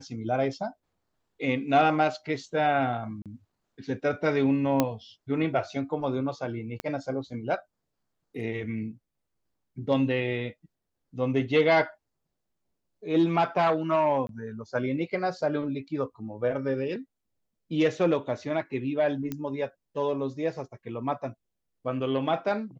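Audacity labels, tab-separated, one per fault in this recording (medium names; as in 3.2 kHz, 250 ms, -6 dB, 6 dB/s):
3.220000	3.260000	dropout 37 ms
4.800000	4.800000	pop -8 dBFS
6.800000	6.800000	pop -18 dBFS
14.270000	14.290000	dropout 22 ms
19.320000	19.320000	pop -18 dBFS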